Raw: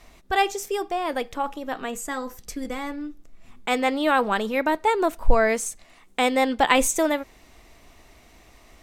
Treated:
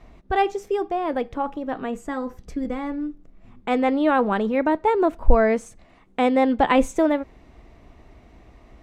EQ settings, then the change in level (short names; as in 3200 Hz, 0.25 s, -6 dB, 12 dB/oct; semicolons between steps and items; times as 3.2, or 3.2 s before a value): HPF 94 Hz 6 dB/oct; tilt -3 dB/oct; high shelf 5600 Hz -9.5 dB; 0.0 dB